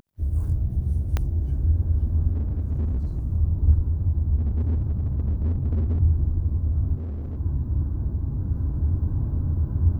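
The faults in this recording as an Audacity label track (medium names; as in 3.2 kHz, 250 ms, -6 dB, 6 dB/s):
1.170000	1.170000	pop -12 dBFS
2.320000	3.190000	clipped -21.5 dBFS
4.360000	6.010000	clipped -20 dBFS
6.960000	7.380000	clipped -28 dBFS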